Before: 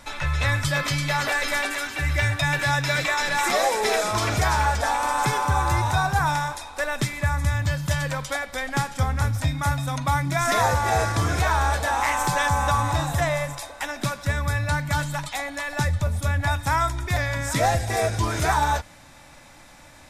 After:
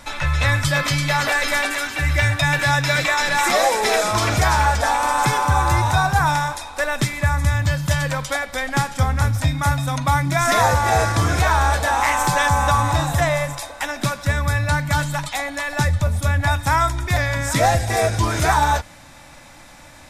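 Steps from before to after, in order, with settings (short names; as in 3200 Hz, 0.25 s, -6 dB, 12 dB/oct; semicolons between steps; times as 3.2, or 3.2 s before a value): notch 410 Hz, Q 12; gain +4.5 dB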